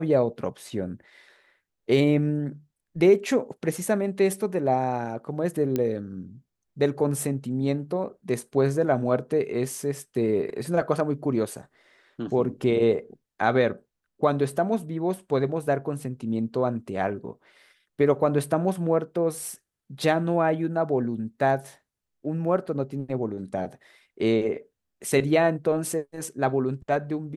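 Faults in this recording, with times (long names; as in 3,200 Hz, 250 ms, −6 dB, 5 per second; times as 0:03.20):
0:05.76: click −13 dBFS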